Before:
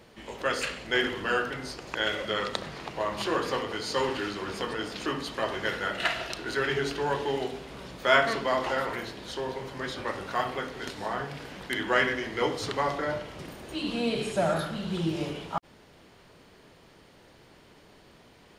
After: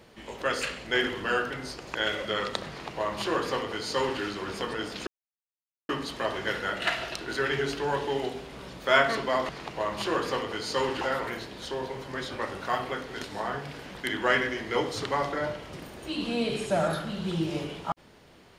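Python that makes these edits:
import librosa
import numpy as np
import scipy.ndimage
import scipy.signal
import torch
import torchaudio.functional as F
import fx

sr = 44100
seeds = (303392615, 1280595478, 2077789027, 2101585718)

y = fx.edit(x, sr, fx.duplicate(start_s=2.69, length_s=1.52, to_s=8.67),
    fx.insert_silence(at_s=5.07, length_s=0.82), tone=tone)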